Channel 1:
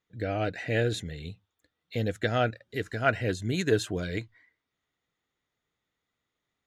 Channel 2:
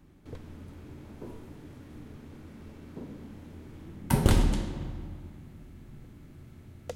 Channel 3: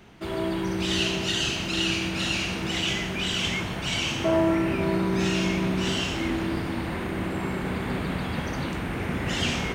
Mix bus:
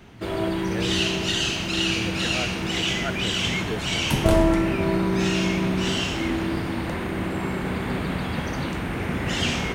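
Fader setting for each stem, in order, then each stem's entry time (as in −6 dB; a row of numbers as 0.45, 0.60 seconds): −6.5, 0.0, +2.0 decibels; 0.00, 0.00, 0.00 seconds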